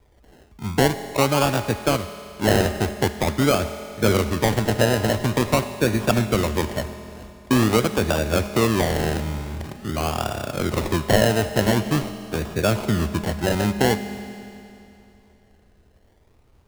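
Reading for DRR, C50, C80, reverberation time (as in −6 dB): 9.5 dB, 10.5 dB, 11.0 dB, 2.8 s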